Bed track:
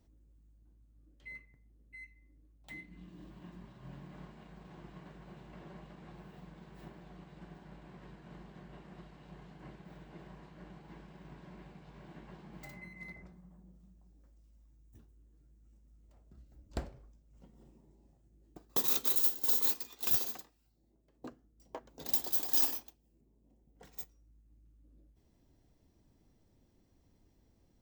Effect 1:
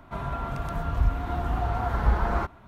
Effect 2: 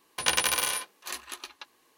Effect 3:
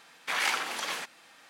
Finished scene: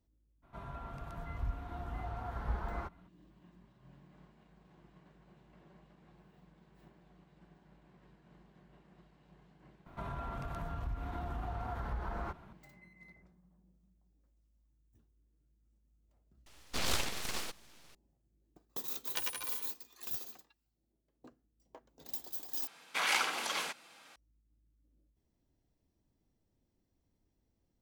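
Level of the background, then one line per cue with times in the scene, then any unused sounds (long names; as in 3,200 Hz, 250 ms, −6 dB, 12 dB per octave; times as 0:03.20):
bed track −10 dB
0:00.42: mix in 1 −14 dB, fades 0.02 s
0:09.86: mix in 1 −6 dB + downward compressor 3 to 1, threshold −31 dBFS
0:16.46: mix in 3 −2 dB + full-wave rectification
0:18.89: mix in 2 −13 dB + spectral dynamics exaggerated over time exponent 2
0:22.67: overwrite with 3 −2 dB + notch filter 1,800 Hz, Q 10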